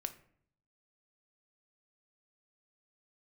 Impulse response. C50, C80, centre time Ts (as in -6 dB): 14.0 dB, 18.0 dB, 6 ms